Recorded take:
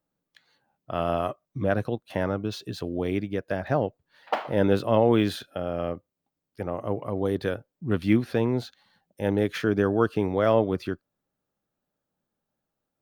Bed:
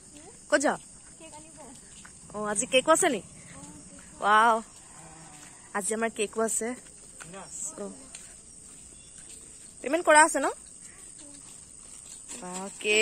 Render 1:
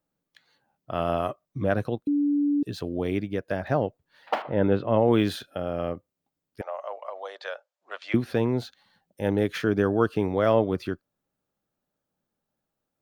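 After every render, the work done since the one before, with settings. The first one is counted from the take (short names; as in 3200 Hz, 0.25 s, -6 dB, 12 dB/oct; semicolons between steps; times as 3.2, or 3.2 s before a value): 2.07–2.63 bleep 289 Hz -20 dBFS; 4.42–5.08 air absorption 340 m; 6.61–8.14 Chebyshev band-pass 580–7400 Hz, order 4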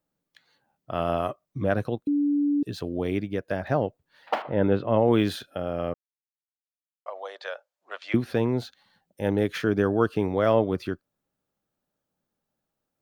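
5.94–7.06 mute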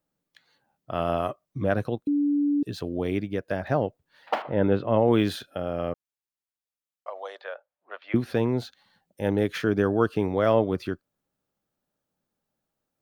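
7.41–8.16 air absorption 380 m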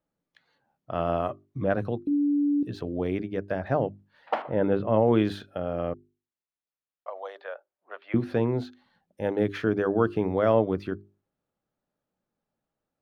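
LPF 2000 Hz 6 dB/oct; notches 50/100/150/200/250/300/350/400 Hz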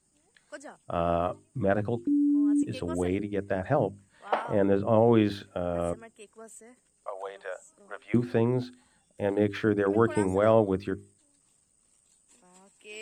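add bed -20 dB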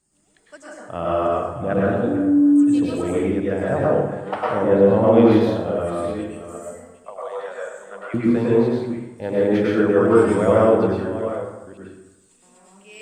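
reverse delay 0.471 s, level -11 dB; plate-style reverb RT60 1 s, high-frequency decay 0.6×, pre-delay 90 ms, DRR -6 dB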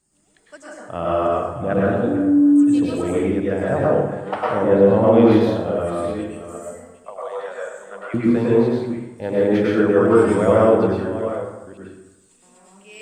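gain +1 dB; limiter -3 dBFS, peak gain reduction 1.5 dB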